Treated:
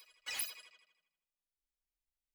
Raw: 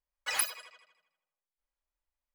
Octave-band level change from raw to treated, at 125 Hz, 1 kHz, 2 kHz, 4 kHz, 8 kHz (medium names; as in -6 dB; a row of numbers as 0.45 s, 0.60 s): no reading, -14.5 dB, -9.0 dB, -6.0 dB, -9.5 dB